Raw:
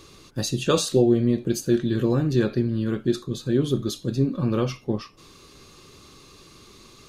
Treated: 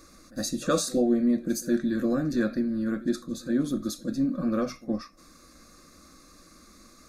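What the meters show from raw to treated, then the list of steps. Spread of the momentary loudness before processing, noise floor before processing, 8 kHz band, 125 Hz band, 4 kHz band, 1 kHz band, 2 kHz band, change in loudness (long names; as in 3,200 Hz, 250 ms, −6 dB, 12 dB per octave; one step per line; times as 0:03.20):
9 LU, −51 dBFS, −2.0 dB, −13.5 dB, −6.5 dB, −2.5 dB, −1.5 dB, −4.0 dB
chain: dynamic equaliser 3,400 Hz, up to +4 dB, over −49 dBFS, Q 3
phaser with its sweep stopped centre 610 Hz, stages 8
echo ahead of the sound 66 ms −20.5 dB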